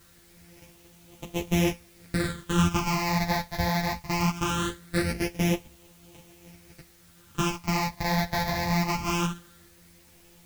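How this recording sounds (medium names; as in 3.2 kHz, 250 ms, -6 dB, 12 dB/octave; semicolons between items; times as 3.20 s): a buzz of ramps at a fixed pitch in blocks of 256 samples; phasing stages 8, 0.21 Hz, lowest notch 380–1500 Hz; a quantiser's noise floor 10-bit, dither triangular; a shimmering, thickened sound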